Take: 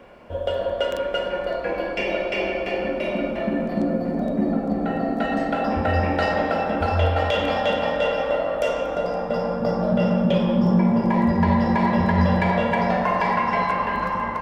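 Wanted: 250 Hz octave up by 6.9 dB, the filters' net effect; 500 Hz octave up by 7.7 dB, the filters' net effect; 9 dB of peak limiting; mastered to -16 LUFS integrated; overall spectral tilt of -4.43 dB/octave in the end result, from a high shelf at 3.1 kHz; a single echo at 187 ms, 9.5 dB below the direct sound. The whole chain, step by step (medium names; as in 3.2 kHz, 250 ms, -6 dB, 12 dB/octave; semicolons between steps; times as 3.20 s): peaking EQ 250 Hz +7 dB; peaking EQ 500 Hz +7.5 dB; treble shelf 3.1 kHz +4 dB; peak limiter -11 dBFS; delay 187 ms -9.5 dB; trim +3 dB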